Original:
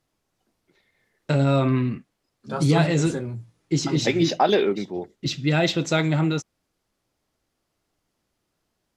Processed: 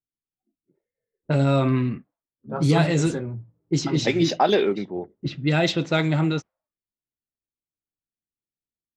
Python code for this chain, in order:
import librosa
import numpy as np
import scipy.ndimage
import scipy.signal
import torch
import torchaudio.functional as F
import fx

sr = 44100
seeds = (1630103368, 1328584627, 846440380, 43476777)

y = fx.env_lowpass(x, sr, base_hz=370.0, full_db=-16.0)
y = fx.noise_reduce_blind(y, sr, reduce_db=23)